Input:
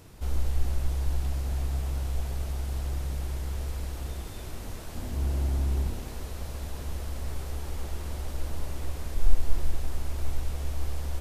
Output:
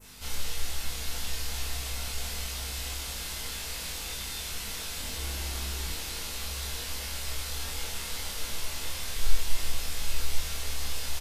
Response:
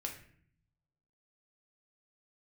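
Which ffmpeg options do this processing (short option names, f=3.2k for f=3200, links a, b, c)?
-filter_complex "[0:a]aeval=exprs='val(0)+0.00631*(sin(2*PI*50*n/s)+sin(2*PI*2*50*n/s)/2+sin(2*PI*3*50*n/s)/3+sin(2*PI*4*50*n/s)/4+sin(2*PI*5*50*n/s)/5)':c=same,tiltshelf=f=970:g=-9.5,asplit=2[a][b];[b]adelay=24,volume=-2.5dB[c];[a][c]amix=inputs=2:normalize=0,aecho=1:1:840:0.422[d];[1:a]atrim=start_sample=2205,atrim=end_sample=3087[e];[d][e]afir=irnorm=-1:irlink=0,adynamicequalizer=threshold=0.00141:dfrequency=4000:dqfactor=0.84:tfrequency=4000:tqfactor=0.84:attack=5:release=100:ratio=0.375:range=2.5:mode=boostabove:tftype=bell"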